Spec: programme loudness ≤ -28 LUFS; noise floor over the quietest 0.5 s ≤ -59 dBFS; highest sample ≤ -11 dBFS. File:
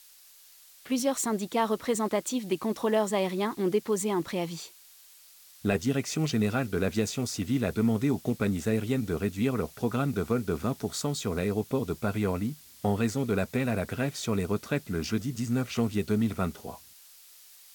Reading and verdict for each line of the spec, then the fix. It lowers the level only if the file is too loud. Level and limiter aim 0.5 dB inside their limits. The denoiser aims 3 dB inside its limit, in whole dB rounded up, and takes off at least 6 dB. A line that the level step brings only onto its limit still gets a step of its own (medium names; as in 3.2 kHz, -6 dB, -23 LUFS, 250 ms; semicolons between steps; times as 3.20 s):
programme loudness -29.5 LUFS: pass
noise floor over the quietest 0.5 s -55 dBFS: fail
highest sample -12.0 dBFS: pass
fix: noise reduction 7 dB, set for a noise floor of -55 dBFS